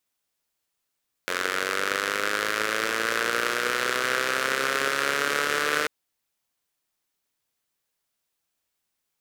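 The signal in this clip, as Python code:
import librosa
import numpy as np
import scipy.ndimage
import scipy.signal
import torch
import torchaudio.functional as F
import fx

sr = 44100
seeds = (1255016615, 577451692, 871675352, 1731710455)

y = fx.engine_four_rev(sr, seeds[0], length_s=4.59, rpm=2700, resonances_hz=(480.0, 1400.0), end_rpm=4500)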